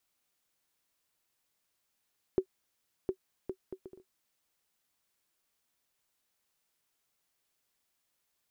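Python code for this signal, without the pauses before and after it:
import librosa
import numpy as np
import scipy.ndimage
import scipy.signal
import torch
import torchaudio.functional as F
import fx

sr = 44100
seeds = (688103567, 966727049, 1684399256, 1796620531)

y = fx.bouncing_ball(sr, first_gap_s=0.71, ratio=0.57, hz=377.0, decay_ms=78.0, level_db=-16.5)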